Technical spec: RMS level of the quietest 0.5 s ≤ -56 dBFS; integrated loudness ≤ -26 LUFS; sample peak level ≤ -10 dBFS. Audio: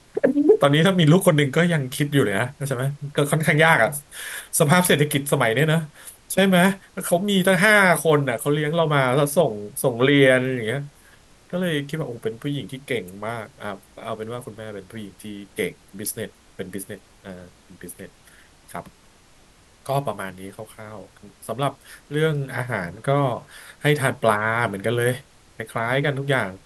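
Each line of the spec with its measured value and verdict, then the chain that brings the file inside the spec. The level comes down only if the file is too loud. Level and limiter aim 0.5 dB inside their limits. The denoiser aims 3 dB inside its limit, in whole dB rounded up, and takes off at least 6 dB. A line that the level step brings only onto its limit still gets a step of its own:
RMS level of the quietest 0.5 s -53 dBFS: fail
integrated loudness -20.5 LUFS: fail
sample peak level -4.5 dBFS: fail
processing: trim -6 dB

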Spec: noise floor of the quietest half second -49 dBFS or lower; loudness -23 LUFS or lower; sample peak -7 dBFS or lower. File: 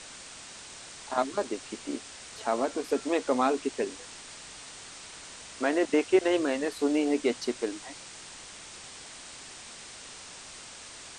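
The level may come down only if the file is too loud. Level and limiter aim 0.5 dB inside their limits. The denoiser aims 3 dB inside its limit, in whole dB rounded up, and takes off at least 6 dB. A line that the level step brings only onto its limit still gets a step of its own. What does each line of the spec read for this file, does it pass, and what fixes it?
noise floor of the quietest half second -46 dBFS: fail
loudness -29.0 LUFS: pass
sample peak -10.5 dBFS: pass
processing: noise reduction 6 dB, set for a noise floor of -46 dBFS

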